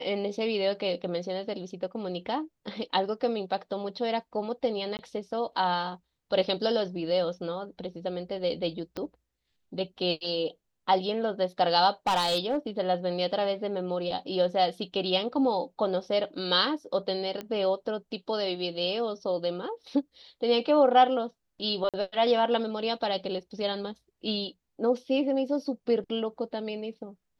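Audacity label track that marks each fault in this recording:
4.970000	4.990000	dropout 19 ms
8.970000	8.970000	pop -21 dBFS
12.070000	12.570000	clipped -21 dBFS
17.410000	17.410000	pop -21 dBFS
21.890000	21.940000	dropout 47 ms

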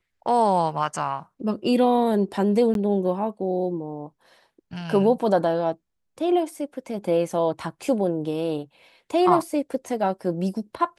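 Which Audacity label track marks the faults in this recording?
2.740000	2.750000	dropout 12 ms

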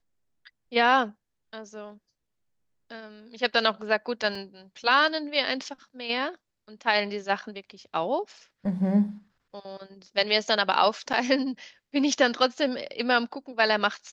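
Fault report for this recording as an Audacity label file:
4.350000	4.350000	dropout 4 ms
11.130000	11.140000	dropout 6.9 ms

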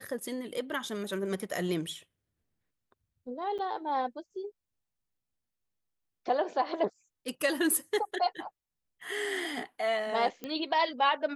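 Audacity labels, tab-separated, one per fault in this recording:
3.580000	3.590000	dropout 7.8 ms
10.440000	10.440000	pop -23 dBFS

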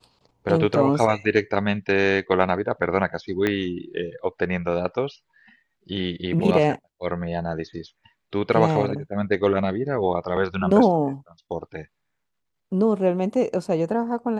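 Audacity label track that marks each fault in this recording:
3.470000	3.470000	pop -10 dBFS

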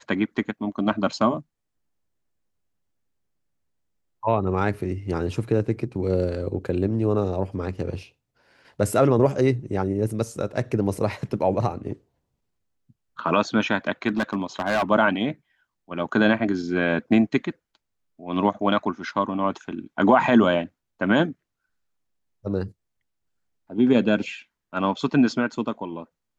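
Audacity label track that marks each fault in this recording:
14.080000	14.830000	clipped -18 dBFS

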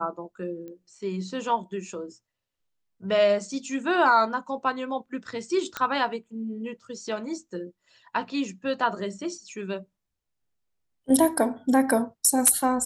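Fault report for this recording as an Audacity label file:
0.680000	0.680000	pop -30 dBFS
5.770000	5.770000	pop -13 dBFS

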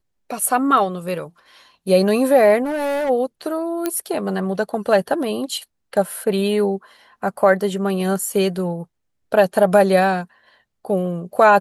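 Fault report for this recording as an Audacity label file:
2.640000	3.100000	clipped -19.5 dBFS
3.860000	3.860000	pop -7 dBFS

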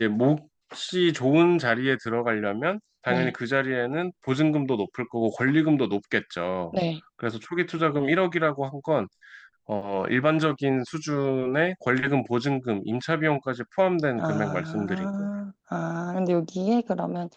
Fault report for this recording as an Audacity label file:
9.810000	9.810000	dropout 4.6 ms

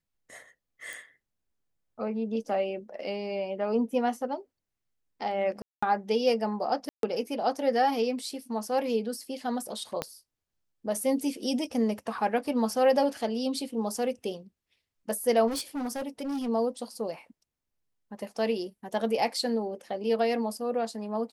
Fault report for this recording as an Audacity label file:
0.930000	0.930000	pop
5.620000	5.830000	dropout 205 ms
6.890000	7.030000	dropout 142 ms
10.020000	10.020000	pop -15 dBFS
15.470000	16.490000	clipped -29 dBFS

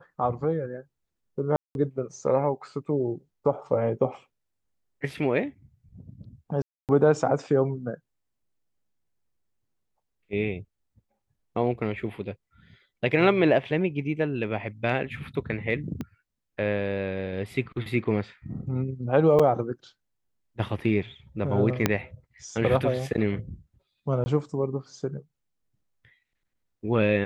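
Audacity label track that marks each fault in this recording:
1.560000	1.750000	dropout 191 ms
6.620000	6.890000	dropout 268 ms
16.010000	16.010000	pop -21 dBFS
19.390000	19.400000	dropout 5.7 ms
21.860000	21.860000	pop -6 dBFS
24.240000	24.260000	dropout 20 ms

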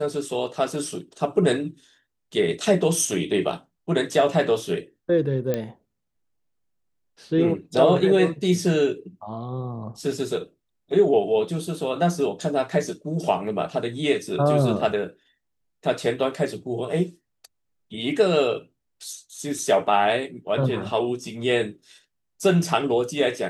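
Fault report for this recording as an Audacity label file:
5.540000	5.540000	pop -12 dBFS

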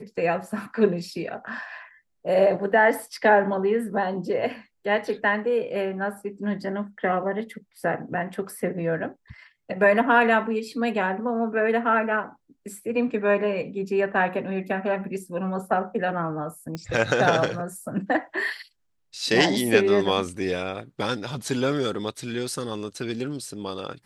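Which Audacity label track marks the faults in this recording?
16.750000	16.750000	pop -18 dBFS

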